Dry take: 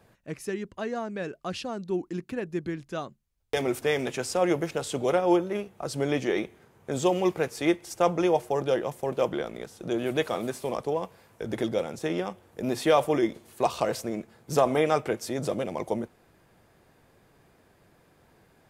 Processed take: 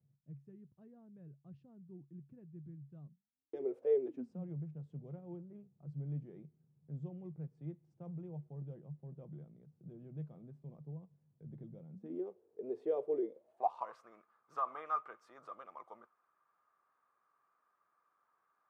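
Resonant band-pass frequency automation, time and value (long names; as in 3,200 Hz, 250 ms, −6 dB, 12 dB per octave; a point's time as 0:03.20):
resonant band-pass, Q 12
0:03.02 140 Hz
0:03.83 540 Hz
0:04.48 150 Hz
0:11.89 150 Hz
0:12.29 420 Hz
0:13.22 420 Hz
0:13.97 1,200 Hz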